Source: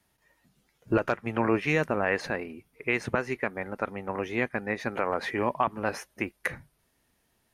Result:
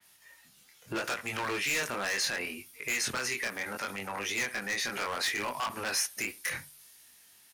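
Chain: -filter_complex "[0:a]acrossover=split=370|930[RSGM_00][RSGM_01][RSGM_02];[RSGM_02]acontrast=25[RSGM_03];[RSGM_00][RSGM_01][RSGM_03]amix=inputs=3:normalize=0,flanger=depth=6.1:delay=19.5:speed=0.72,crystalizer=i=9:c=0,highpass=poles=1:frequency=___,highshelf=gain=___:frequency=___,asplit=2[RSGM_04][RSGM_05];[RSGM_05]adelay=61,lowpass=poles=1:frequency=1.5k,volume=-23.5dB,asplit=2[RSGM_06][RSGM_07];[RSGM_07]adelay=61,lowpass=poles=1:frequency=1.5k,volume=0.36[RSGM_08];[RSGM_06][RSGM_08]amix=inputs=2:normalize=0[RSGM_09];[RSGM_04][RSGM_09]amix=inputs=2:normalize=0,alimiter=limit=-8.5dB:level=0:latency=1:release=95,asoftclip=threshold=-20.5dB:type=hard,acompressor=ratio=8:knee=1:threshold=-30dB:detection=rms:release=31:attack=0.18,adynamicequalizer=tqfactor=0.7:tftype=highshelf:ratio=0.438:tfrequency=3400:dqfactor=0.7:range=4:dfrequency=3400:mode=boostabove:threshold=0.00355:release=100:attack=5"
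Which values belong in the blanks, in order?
77, -11, 6.6k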